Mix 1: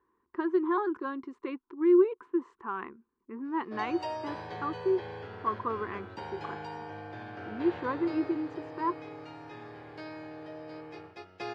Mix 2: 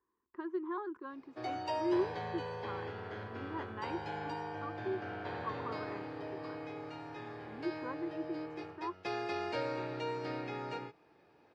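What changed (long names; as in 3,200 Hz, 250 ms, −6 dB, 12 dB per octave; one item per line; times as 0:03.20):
speech −10.5 dB
background: entry −2.35 s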